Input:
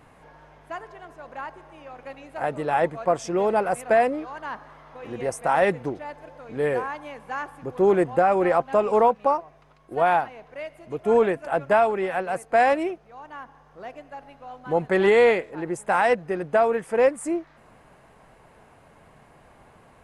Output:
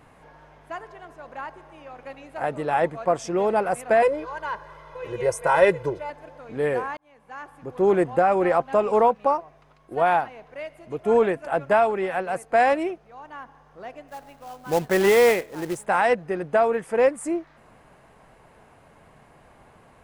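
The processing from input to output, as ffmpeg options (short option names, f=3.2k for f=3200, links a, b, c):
-filter_complex "[0:a]asettb=1/sr,asplit=3[a][b][c];[a]atrim=end=4.024[d];[b]atrim=start=4.02:end=6.1,asetpts=PTS-STARTPTS,afade=t=in:d=0.004:c=qsin,afade=t=out:st=2.076:d=0.004:c=qsin,aecho=1:1:2:0.94,atrim=end_sample=91728[e];[c]atrim=start=6.096[f];[d][e]acrossfade=d=0.004:c1=hsin:c2=qsin[g];[g][f]acrossfade=d=0.004:c1=qsin:c2=hsin,asplit=3[h][i][j];[h]afade=t=out:st=14.07:d=0.02[k];[i]acrusher=bits=3:mode=log:mix=0:aa=0.000001,afade=t=in:st=14.07:d=0.02,afade=t=out:st=15.84:d=0.02[l];[j]afade=t=in:st=15.84:d=0.02[m];[k][l][m]amix=inputs=3:normalize=0,asplit=2[n][o];[n]atrim=end=6.97,asetpts=PTS-STARTPTS,afade=t=out:st=6.966:d=0.004:c=hsin[p];[o]atrim=start=6.97,asetpts=PTS-STARTPTS,afade=t=in:d=0.97[q];[p][q]concat=n=2:v=0:a=1"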